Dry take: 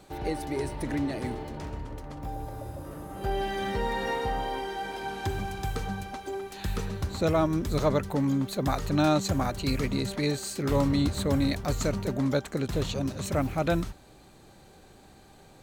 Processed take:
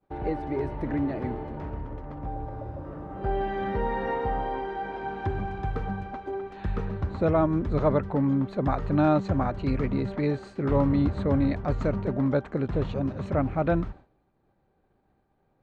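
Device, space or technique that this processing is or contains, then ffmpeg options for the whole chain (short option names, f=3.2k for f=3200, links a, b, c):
hearing-loss simulation: -af "lowpass=1.6k,agate=range=-33dB:threshold=-42dB:ratio=3:detection=peak,volume=2dB"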